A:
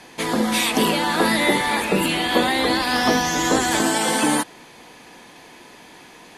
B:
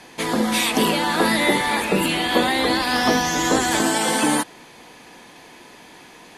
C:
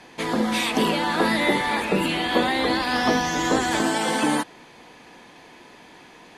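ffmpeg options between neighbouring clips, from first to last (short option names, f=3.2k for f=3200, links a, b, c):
-af anull
-af "highshelf=f=7.6k:g=-11.5,volume=-2dB"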